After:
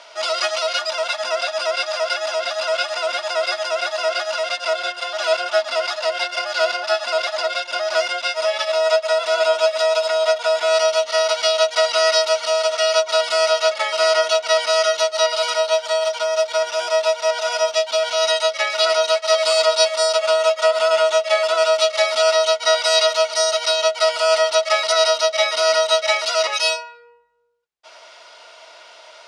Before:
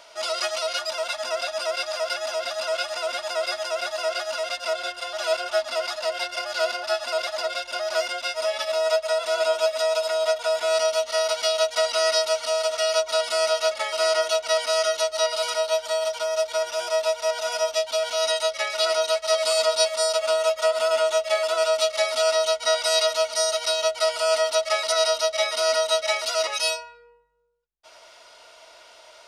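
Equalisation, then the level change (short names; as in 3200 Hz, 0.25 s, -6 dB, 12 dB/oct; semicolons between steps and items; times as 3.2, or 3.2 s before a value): HPF 530 Hz 6 dB/oct; air absorption 65 m; +7.5 dB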